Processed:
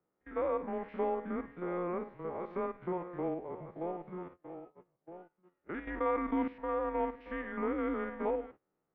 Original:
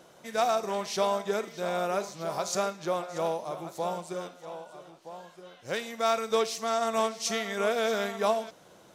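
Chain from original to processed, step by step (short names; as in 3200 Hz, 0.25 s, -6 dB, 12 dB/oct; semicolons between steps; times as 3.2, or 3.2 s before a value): stepped spectrum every 50 ms; gate -45 dBFS, range -21 dB; mistuned SSB -180 Hz 270–2300 Hz; 5.87–6.48 fast leveller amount 50%; gain -5 dB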